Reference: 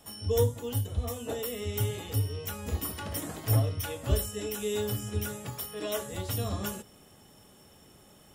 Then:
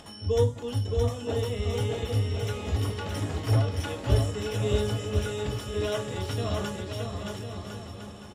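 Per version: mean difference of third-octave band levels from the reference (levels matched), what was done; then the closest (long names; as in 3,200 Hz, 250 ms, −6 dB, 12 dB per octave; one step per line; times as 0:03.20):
6.5 dB: low-pass filter 5,600 Hz 12 dB per octave
upward compression, threshold −45 dBFS
on a send: bouncing-ball delay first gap 620 ms, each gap 0.7×, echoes 5
on the sum: level +2 dB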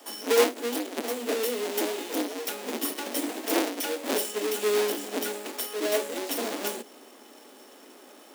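9.0 dB: each half-wave held at its own peak
dynamic equaliser 1,200 Hz, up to −6 dB, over −47 dBFS, Q 1.5
Butterworth high-pass 240 Hz 72 dB per octave
level +3 dB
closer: first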